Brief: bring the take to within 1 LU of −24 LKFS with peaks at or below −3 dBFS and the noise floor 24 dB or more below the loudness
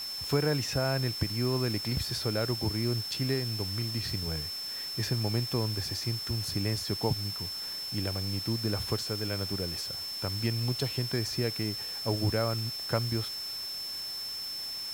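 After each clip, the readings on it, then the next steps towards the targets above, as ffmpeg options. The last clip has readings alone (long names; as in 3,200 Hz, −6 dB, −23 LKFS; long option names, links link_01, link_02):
interfering tone 5,300 Hz; level of the tone −35 dBFS; background noise floor −38 dBFS; target noise floor −55 dBFS; integrated loudness −31.0 LKFS; sample peak −13.0 dBFS; target loudness −24.0 LKFS
→ -af "bandreject=frequency=5300:width=30"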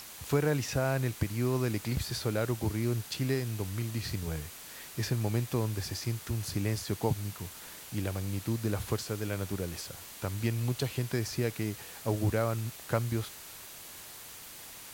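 interfering tone none found; background noise floor −47 dBFS; target noise floor −57 dBFS
→ -af "afftdn=noise_reduction=10:noise_floor=-47"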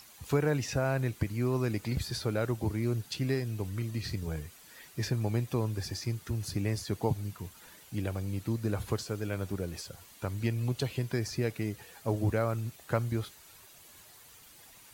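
background noise floor −55 dBFS; target noise floor −58 dBFS
→ -af "afftdn=noise_reduction=6:noise_floor=-55"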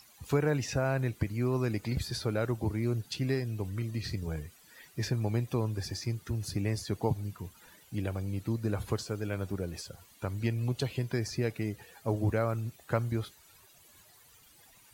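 background noise floor −60 dBFS; integrated loudness −33.5 LKFS; sample peak −13.0 dBFS; target loudness −24.0 LKFS
→ -af "volume=9.5dB"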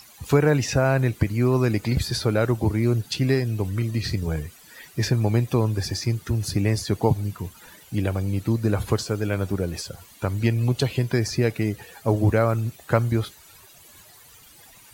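integrated loudness −24.0 LKFS; sample peak −3.5 dBFS; background noise floor −50 dBFS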